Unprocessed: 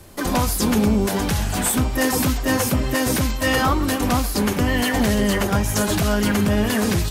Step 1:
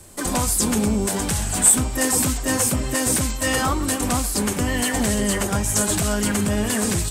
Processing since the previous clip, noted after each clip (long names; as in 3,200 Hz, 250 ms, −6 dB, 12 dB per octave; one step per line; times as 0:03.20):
parametric band 8,200 Hz +14 dB 0.58 octaves
level −3 dB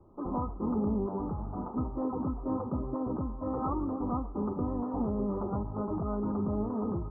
Chebyshev low-pass with heavy ripple 1,300 Hz, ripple 6 dB
level −6 dB